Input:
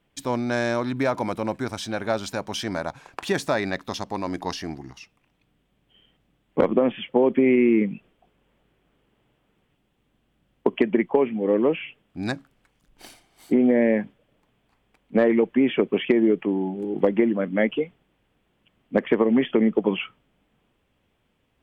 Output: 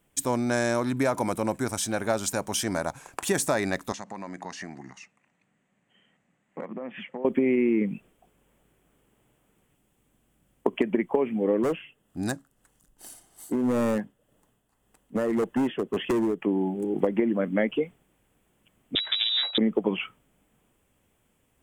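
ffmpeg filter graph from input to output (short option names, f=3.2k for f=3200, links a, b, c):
-filter_complex "[0:a]asettb=1/sr,asplit=3[a][b][c];[a]atrim=end=3.924[d];[b]atrim=start=3.92:end=7.25,asetpts=PTS-STARTPTS,afade=t=in:d=0.004:c=qsin,afade=t=out:st=3.326:d=0.004:c=qsin,acompressor=threshold=-32dB:ratio=4:attack=3.2:release=140:knee=1:detection=peak,highpass=190,equalizer=f=190:t=q:w=4:g=4,equalizer=f=310:t=q:w=4:g=-6,equalizer=f=430:t=q:w=4:g=-5,equalizer=f=1.9k:t=q:w=4:g=7,equalizer=f=3.3k:t=q:w=4:g=-7,equalizer=f=5.3k:t=q:w=4:g=-10,lowpass=f=6.8k:w=0.5412,lowpass=f=6.8k:w=1.3066[e];[c]atrim=start=7.246[f];[d][e]acrossfade=d=0.004:c1=hsin:c2=qsin[g];[g][f]acrossfade=d=0.004:c1=qsin:c2=hsin,asettb=1/sr,asplit=3[h][i][j];[h]atrim=end=11.634[k];[i]atrim=start=11.63:end=16.42,asetpts=PTS-STARTPTS,afade=t=in:d=0.004:c=qsin,afade=t=out:st=4.786:d=0.004:c=qsin,bandreject=f=2.3k:w=5.1,tremolo=f=1.8:d=0.55,asoftclip=type=hard:threshold=-20.5dB[l];[j]atrim=start=16.416[m];[k][l]acrossfade=d=0.004:c1=hsin:c2=qsin[n];[n][m]acrossfade=d=0.004:c1=qsin:c2=hsin,asettb=1/sr,asplit=3[o][p][q];[o]atrim=end=18.954[r];[p]atrim=start=18.95:end=19.58,asetpts=PTS-STARTPTS,afade=t=in:d=0.004:c=qsin,afade=t=out:st=0.626:d=0.004:c=qsin,asubboost=boost=10.5:cutoff=130,aeval=exprs='max(val(0),0)':c=same,lowpass=f=3.3k:t=q:w=0.5098,lowpass=f=3.3k:t=q:w=0.6013,lowpass=f=3.3k:t=q:w=0.9,lowpass=f=3.3k:t=q:w=2.563,afreqshift=-3900[s];[q]atrim=start=19.576[t];[r][s]acrossfade=d=0.004:c1=hsin:c2=qsin[u];[u][t]acrossfade=d=0.004:c1=qsin:c2=hsin,highshelf=f=5.9k:t=q:w=1.5:g=11,acompressor=threshold=-19dB:ratio=6"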